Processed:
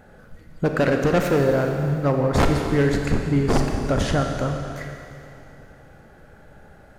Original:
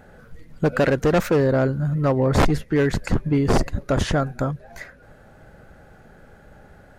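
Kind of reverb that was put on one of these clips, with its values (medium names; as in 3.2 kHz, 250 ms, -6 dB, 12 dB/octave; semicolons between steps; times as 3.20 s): Schroeder reverb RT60 2.7 s, combs from 28 ms, DRR 3 dB; trim -1.5 dB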